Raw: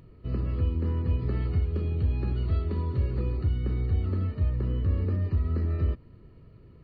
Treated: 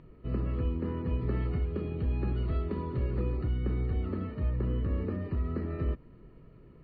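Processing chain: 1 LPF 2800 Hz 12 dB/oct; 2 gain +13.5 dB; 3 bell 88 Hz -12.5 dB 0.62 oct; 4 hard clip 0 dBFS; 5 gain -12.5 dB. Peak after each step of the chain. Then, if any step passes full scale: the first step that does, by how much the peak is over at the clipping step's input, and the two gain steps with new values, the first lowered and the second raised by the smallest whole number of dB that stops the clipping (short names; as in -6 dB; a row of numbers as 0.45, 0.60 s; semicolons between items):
-18.0, -4.5, -5.5, -5.5, -18.0 dBFS; no overload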